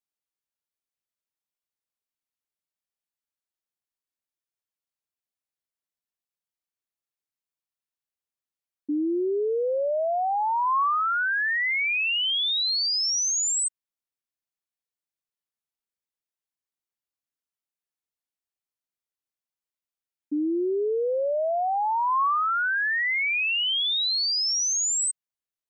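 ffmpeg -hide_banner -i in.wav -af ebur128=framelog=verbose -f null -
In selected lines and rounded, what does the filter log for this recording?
Integrated loudness:
  I:         -23.4 LUFS
  Threshold: -33.5 LUFS
Loudness range:
  LRA:        10.6 LU
  Threshold: -45.1 LUFS
  LRA low:   -32.9 LUFS
  LRA high:  -22.3 LUFS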